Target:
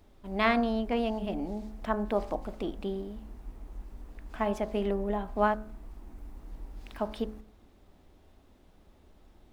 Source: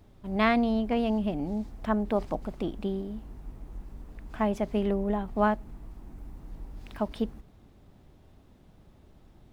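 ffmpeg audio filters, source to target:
-af "equalizer=f=130:w=1.4:g=-11.5,bandreject=f=53.78:t=h:w=4,bandreject=f=107.56:t=h:w=4,bandreject=f=161.34:t=h:w=4,bandreject=f=215.12:t=h:w=4,bandreject=f=268.9:t=h:w=4,bandreject=f=322.68:t=h:w=4,bandreject=f=376.46:t=h:w=4,bandreject=f=430.24:t=h:w=4,bandreject=f=484.02:t=h:w=4,bandreject=f=537.8:t=h:w=4,bandreject=f=591.58:t=h:w=4,bandreject=f=645.36:t=h:w=4,bandreject=f=699.14:t=h:w=4,bandreject=f=752.92:t=h:w=4,bandreject=f=806.7:t=h:w=4,bandreject=f=860.48:t=h:w=4,bandreject=f=914.26:t=h:w=4,bandreject=f=968.04:t=h:w=4,bandreject=f=1.02182k:t=h:w=4,bandreject=f=1.0756k:t=h:w=4,bandreject=f=1.12938k:t=h:w=4,bandreject=f=1.18316k:t=h:w=4,bandreject=f=1.23694k:t=h:w=4,bandreject=f=1.29072k:t=h:w=4,bandreject=f=1.3445k:t=h:w=4,bandreject=f=1.39828k:t=h:w=4,bandreject=f=1.45206k:t=h:w=4,bandreject=f=1.50584k:t=h:w=4,bandreject=f=1.55962k:t=h:w=4,bandreject=f=1.6134k:t=h:w=4,bandreject=f=1.66718k:t=h:w=4,bandreject=f=1.72096k:t=h:w=4,bandreject=f=1.77474k:t=h:w=4,bandreject=f=1.82852k:t=h:w=4"

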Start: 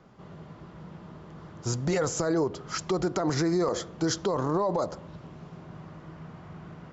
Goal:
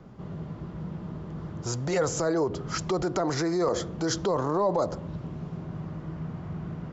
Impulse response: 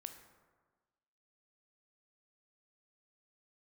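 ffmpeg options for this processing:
-filter_complex "[0:a]lowshelf=f=440:g=10.5,acrossover=split=450[a][b];[a]alimiter=level_in=3.5dB:limit=-24dB:level=0:latency=1,volume=-3.5dB[c];[c][b]amix=inputs=2:normalize=0"

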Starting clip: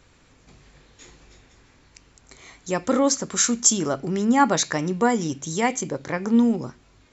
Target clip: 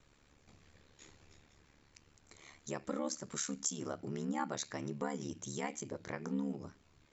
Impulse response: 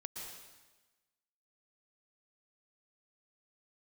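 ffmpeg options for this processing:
-af "acompressor=threshold=-30dB:ratio=2,aeval=exprs='val(0)*sin(2*PI*36*n/s)':c=same,volume=-8dB"

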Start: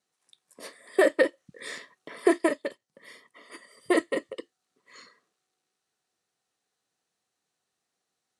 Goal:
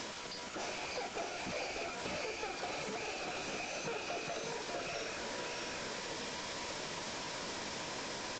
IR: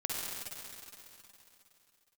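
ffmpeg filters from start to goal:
-filter_complex "[0:a]aeval=exprs='val(0)+0.5*0.0188*sgn(val(0))':c=same,acompressor=threshold=-31dB:ratio=16,asoftclip=type=tanh:threshold=-33dB,asplit=3[a][b][c];[b]asetrate=33038,aresample=44100,atempo=1.33484,volume=-17dB[d];[c]asetrate=88200,aresample=44100,atempo=0.5,volume=-12dB[e];[a][d][e]amix=inputs=3:normalize=0,acrusher=bits=7:mix=0:aa=0.000001,asetrate=57191,aresample=44100,atempo=0.771105,acrossover=split=780|5900[f][g][h];[f]acompressor=threshold=-46dB:ratio=4[i];[g]acompressor=threshold=-49dB:ratio=4[j];[h]acompressor=threshold=-54dB:ratio=4[k];[i][j][k]amix=inputs=3:normalize=0,aecho=1:1:592|645:0.562|0.631,volume=3.5dB" -ar 16000 -c:a libvorbis -b:a 64k

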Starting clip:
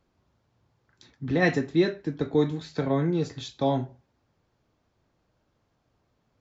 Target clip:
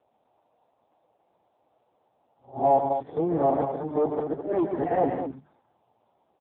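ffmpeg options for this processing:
-af "areverse,aemphasis=mode=production:type=riaa,bandreject=f=50:t=h:w=6,bandreject=f=100:t=h:w=6,bandreject=f=150:t=h:w=6,bandreject=f=200:t=h:w=6,bandreject=f=250:t=h:w=6,acontrast=23,volume=22dB,asoftclip=hard,volume=-22dB,lowpass=f=770:t=q:w=3.5,aecho=1:1:139.9|212.8:0.398|0.398" -ar 8000 -c:a libopencore_amrnb -b:a 5900

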